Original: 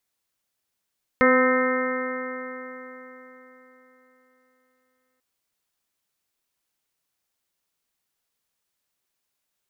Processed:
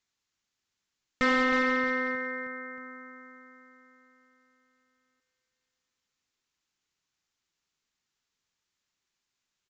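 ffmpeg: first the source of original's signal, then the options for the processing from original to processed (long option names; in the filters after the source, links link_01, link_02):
-f lavfi -i "aevalsrc='0.1*pow(10,-3*t/4)*sin(2*PI*254.14*t)+0.141*pow(10,-3*t/4)*sin(2*PI*509.12*t)+0.0237*pow(10,-3*t/4)*sin(2*PI*765.76*t)+0.0447*pow(10,-3*t/4)*sin(2*PI*1024.9*t)+0.0891*pow(10,-3*t/4)*sin(2*PI*1287.34*t)+0.0398*pow(10,-3*t/4)*sin(2*PI*1553.88*t)+0.0794*pow(10,-3*t/4)*sin(2*PI*1825.29*t)+0.0631*pow(10,-3*t/4)*sin(2*PI*2102.31*t)':duration=3.99:sample_rate=44100"
-af "equalizer=frequency=610:width=1.4:gain=-7.5,aecho=1:1:314|628|942|1256|1570:0.2|0.104|0.054|0.0281|0.0146,aresample=16000,asoftclip=type=tanh:threshold=-20dB,aresample=44100"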